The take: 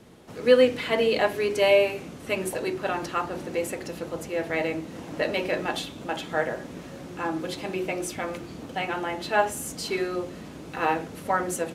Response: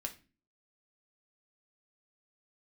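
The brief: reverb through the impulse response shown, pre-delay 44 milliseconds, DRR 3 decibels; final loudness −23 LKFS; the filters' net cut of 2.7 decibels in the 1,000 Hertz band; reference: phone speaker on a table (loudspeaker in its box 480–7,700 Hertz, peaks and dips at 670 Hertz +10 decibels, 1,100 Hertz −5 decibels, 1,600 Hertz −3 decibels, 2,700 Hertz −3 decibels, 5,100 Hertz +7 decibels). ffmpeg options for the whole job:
-filter_complex "[0:a]equalizer=frequency=1000:width_type=o:gain=-8,asplit=2[link_01][link_02];[1:a]atrim=start_sample=2205,adelay=44[link_03];[link_02][link_03]afir=irnorm=-1:irlink=0,volume=-2dB[link_04];[link_01][link_04]amix=inputs=2:normalize=0,highpass=frequency=480:width=0.5412,highpass=frequency=480:width=1.3066,equalizer=frequency=670:width_type=q:width=4:gain=10,equalizer=frequency=1100:width_type=q:width=4:gain=-5,equalizer=frequency=1600:width_type=q:width=4:gain=-3,equalizer=frequency=2700:width_type=q:width=4:gain=-3,equalizer=frequency=5100:width_type=q:width=4:gain=7,lowpass=frequency=7700:width=0.5412,lowpass=frequency=7700:width=1.3066,volume=4dB"

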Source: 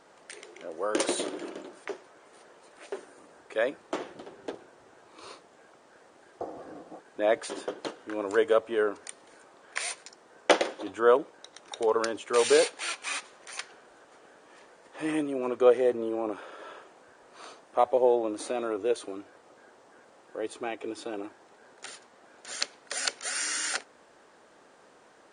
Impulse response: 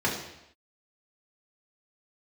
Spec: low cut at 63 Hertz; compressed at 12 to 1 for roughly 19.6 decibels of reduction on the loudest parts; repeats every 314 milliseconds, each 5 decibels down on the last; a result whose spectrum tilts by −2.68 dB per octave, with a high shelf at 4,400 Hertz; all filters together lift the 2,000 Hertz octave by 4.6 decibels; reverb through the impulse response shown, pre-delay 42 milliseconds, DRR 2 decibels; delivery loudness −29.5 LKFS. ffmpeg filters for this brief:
-filter_complex "[0:a]highpass=63,equalizer=frequency=2000:width_type=o:gain=7,highshelf=frequency=4400:gain=-6,acompressor=threshold=-34dB:ratio=12,aecho=1:1:314|628|942|1256|1570|1884|2198:0.562|0.315|0.176|0.0988|0.0553|0.031|0.0173,asplit=2[link_01][link_02];[1:a]atrim=start_sample=2205,adelay=42[link_03];[link_02][link_03]afir=irnorm=-1:irlink=0,volume=-14dB[link_04];[link_01][link_04]amix=inputs=2:normalize=0,volume=8dB"

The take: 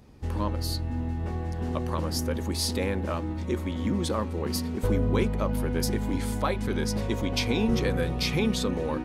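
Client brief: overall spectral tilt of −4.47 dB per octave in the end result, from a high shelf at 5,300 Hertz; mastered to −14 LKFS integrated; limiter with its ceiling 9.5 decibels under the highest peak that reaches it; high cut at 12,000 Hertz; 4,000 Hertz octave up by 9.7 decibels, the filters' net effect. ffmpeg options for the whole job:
ffmpeg -i in.wav -af "lowpass=12000,equalizer=frequency=4000:width_type=o:gain=8,highshelf=frequency=5300:gain=8.5,volume=13.5dB,alimiter=limit=-2.5dB:level=0:latency=1" out.wav

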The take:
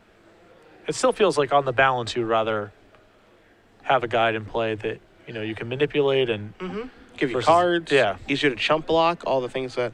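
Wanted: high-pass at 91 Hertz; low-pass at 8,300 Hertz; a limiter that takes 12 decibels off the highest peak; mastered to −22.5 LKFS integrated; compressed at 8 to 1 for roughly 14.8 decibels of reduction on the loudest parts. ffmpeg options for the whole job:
ffmpeg -i in.wav -af "highpass=91,lowpass=8300,acompressor=threshold=-29dB:ratio=8,volume=13.5dB,alimiter=limit=-11.5dB:level=0:latency=1" out.wav

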